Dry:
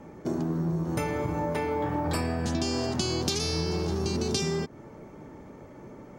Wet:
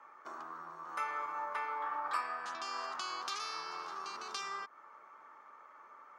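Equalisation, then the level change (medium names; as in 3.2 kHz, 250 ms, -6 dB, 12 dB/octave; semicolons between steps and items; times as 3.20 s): resonant high-pass 1.2 kHz, resonance Q 5.5; low-pass 2.6 kHz 6 dB/octave; -6.5 dB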